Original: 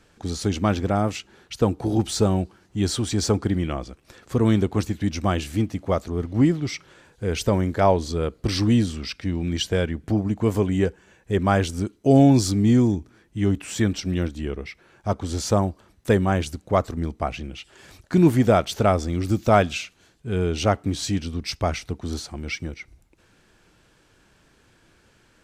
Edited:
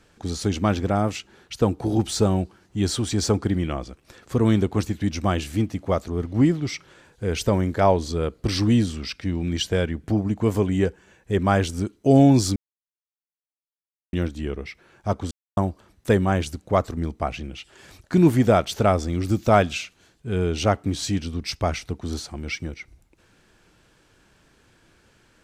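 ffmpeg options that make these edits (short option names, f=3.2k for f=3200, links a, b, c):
-filter_complex "[0:a]asplit=5[a][b][c][d][e];[a]atrim=end=12.56,asetpts=PTS-STARTPTS,afade=t=out:st=12.556:d=0.004:c=hsin[f];[b]atrim=start=12.56:end=14.13,asetpts=PTS-STARTPTS,volume=0[g];[c]atrim=start=14.13:end=15.31,asetpts=PTS-STARTPTS,afade=t=in:d=0.004:c=hsin,afade=t=out:st=1.176:d=0.004:c=hsin[h];[d]atrim=start=15.31:end=15.57,asetpts=PTS-STARTPTS,volume=0[i];[e]atrim=start=15.57,asetpts=PTS-STARTPTS,afade=t=in:d=0.004:c=hsin[j];[f][g][h][i][j]concat=n=5:v=0:a=1"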